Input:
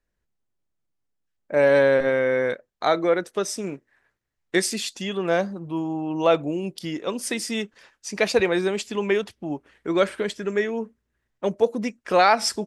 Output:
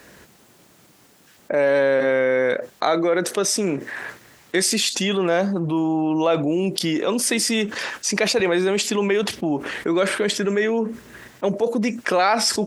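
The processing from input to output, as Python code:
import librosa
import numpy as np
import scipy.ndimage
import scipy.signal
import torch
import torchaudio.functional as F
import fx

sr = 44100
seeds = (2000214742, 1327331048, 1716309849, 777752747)

y = scipy.signal.sosfilt(scipy.signal.butter(2, 150.0, 'highpass', fs=sr, output='sos'), x)
y = fx.env_flatten(y, sr, amount_pct=70)
y = F.gain(torch.from_numpy(y), -2.5).numpy()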